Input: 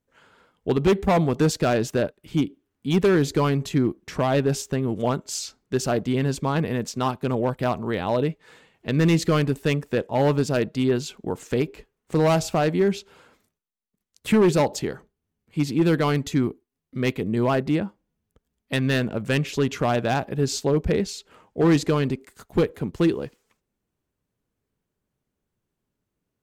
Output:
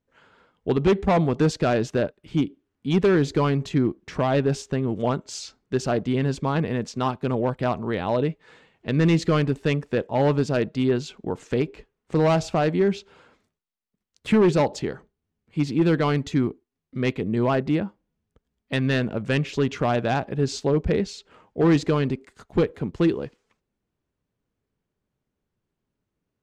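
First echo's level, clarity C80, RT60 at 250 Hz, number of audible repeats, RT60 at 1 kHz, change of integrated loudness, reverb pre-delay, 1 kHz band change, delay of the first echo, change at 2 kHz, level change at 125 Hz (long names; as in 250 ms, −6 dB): no echo audible, no reverb audible, no reverb audible, no echo audible, no reverb audible, 0.0 dB, no reverb audible, −0.5 dB, no echo audible, −0.5 dB, 0.0 dB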